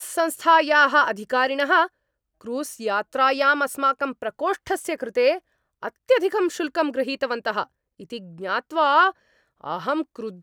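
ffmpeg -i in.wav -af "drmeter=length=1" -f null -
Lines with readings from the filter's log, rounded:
Channel 1: DR: 11.1
Overall DR: 11.1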